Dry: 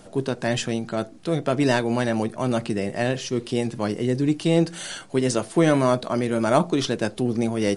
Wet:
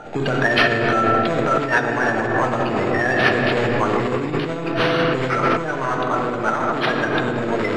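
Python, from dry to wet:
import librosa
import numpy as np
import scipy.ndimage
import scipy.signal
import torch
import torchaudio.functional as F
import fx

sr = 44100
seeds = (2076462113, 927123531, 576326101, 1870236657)

y = fx.spec_quant(x, sr, step_db=30)
y = np.repeat(y[::6], 6)[:len(y)]
y = 10.0 ** (-15.5 / 20.0) * np.tanh(y / 10.0 ** (-15.5 / 20.0))
y = scipy.signal.sosfilt(scipy.signal.butter(2, 5000.0, 'lowpass', fs=sr, output='sos'), y)
y = fx.echo_bbd(y, sr, ms=146, stages=1024, feedback_pct=70, wet_db=-10)
y = fx.room_shoebox(y, sr, seeds[0], volume_m3=180.0, walls='hard', distance_m=0.45)
y = fx.over_compress(y, sr, threshold_db=-25.0, ratio=-1.0)
y = fx.peak_eq(y, sr, hz=1600.0, db=14.0, octaves=2.6)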